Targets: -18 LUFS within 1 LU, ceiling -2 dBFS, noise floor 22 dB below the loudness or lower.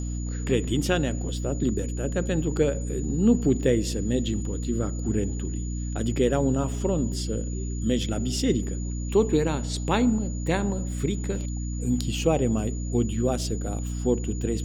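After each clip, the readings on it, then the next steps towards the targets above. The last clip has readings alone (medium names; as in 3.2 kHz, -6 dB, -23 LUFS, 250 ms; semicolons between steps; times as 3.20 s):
hum 60 Hz; highest harmonic 300 Hz; hum level -28 dBFS; steady tone 6.9 kHz; tone level -42 dBFS; loudness -26.5 LUFS; peak level -8.5 dBFS; loudness target -18.0 LUFS
-> hum notches 60/120/180/240/300 Hz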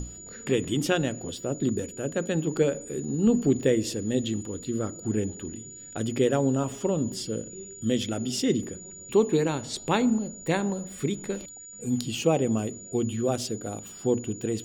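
hum not found; steady tone 6.9 kHz; tone level -42 dBFS
-> band-stop 6.9 kHz, Q 30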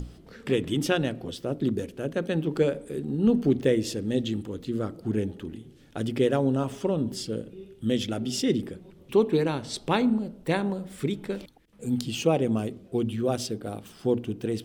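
steady tone not found; loudness -27.5 LUFS; peak level -9.5 dBFS; loudness target -18.0 LUFS
-> trim +9.5 dB; peak limiter -2 dBFS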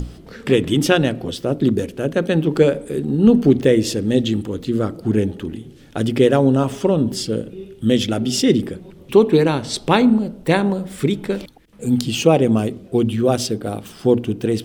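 loudness -18.5 LUFS; peak level -2.0 dBFS; noise floor -43 dBFS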